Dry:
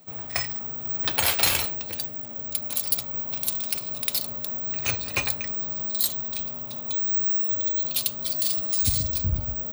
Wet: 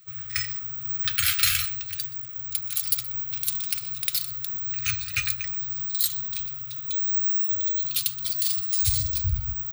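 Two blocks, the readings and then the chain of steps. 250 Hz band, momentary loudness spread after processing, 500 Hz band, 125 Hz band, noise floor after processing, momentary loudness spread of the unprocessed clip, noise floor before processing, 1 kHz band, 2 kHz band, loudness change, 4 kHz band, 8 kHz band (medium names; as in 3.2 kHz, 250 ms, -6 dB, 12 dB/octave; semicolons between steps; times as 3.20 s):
under -10 dB, 8 LU, under -40 dB, -0.5 dB, -37 dBFS, 8 LU, -36 dBFS, -7.5 dB, 0.0 dB, 0.0 dB, 0.0 dB, 0.0 dB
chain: brick-wall FIR band-stop 150–1200 Hz; delay 124 ms -18 dB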